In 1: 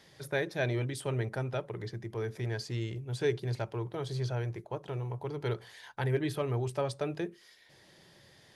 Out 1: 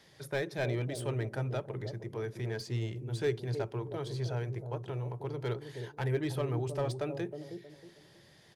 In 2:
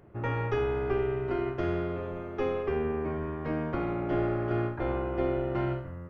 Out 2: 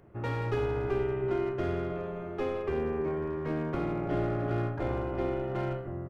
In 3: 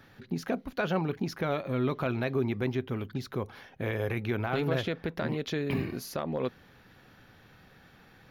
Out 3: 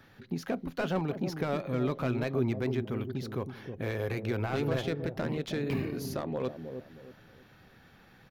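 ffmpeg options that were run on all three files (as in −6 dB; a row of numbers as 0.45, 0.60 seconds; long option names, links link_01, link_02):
-filter_complex "[0:a]acrossover=split=760[link_01][link_02];[link_01]aecho=1:1:316|632|948|1264:0.473|0.147|0.0455|0.0141[link_03];[link_02]aeval=exprs='clip(val(0),-1,0.0112)':channel_layout=same[link_04];[link_03][link_04]amix=inputs=2:normalize=0,volume=-1.5dB"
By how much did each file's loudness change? −1.0, −1.0, −1.0 LU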